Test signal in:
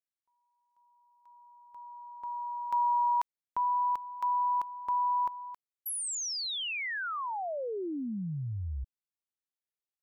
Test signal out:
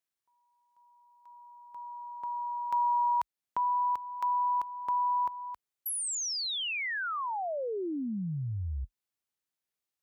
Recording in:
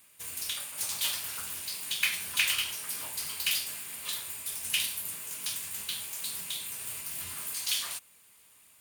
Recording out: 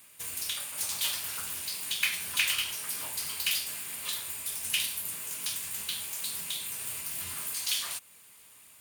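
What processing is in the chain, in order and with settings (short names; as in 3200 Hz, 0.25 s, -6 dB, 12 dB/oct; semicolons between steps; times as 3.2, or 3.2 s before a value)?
HPF 42 Hz 24 dB/oct; in parallel at -0.5 dB: compressor, threshold -42 dBFS; on the sum: gain -1.5 dB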